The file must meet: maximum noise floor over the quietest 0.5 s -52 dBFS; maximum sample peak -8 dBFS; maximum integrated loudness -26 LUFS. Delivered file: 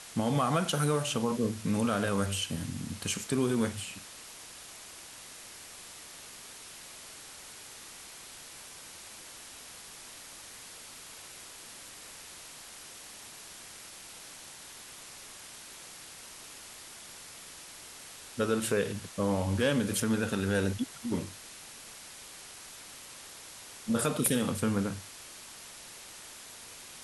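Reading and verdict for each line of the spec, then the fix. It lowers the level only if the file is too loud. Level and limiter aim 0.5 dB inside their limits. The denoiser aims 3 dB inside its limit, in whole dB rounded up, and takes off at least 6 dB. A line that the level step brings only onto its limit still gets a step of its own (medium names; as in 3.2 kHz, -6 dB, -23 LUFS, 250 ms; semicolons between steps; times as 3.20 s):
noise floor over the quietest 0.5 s -48 dBFS: fail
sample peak -13.5 dBFS: pass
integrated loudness -35.0 LUFS: pass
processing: noise reduction 7 dB, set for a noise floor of -48 dBFS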